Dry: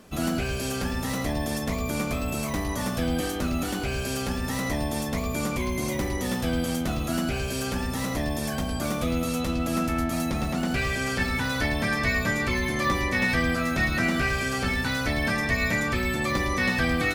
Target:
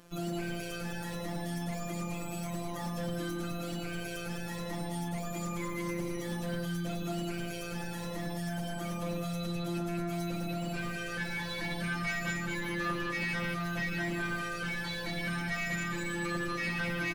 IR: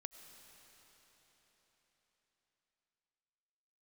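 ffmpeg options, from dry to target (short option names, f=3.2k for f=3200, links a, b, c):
-af "aecho=1:1:203:0.596,afftfilt=real='hypot(re,im)*cos(PI*b)':imag='0':win_size=1024:overlap=0.75,asoftclip=type=tanh:threshold=-23.5dB,volume=-2.5dB"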